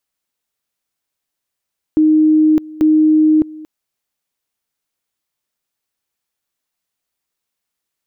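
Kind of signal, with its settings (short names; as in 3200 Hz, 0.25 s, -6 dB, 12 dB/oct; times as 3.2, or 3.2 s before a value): two-level tone 310 Hz -7.5 dBFS, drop 21.5 dB, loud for 0.61 s, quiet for 0.23 s, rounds 2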